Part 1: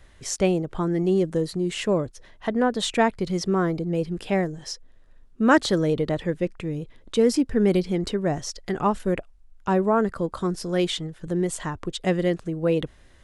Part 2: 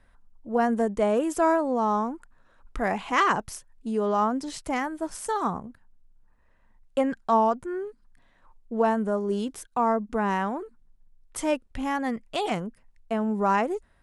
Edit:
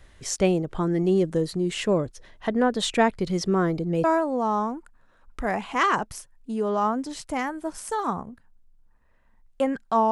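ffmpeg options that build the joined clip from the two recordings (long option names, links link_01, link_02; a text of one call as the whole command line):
ffmpeg -i cue0.wav -i cue1.wav -filter_complex "[0:a]apad=whole_dur=10.11,atrim=end=10.11,atrim=end=4.042[link_01];[1:a]atrim=start=1.408:end=7.48[link_02];[link_01][link_02]acrossfade=duration=0.004:curve1=hsin:curve2=hsin" out.wav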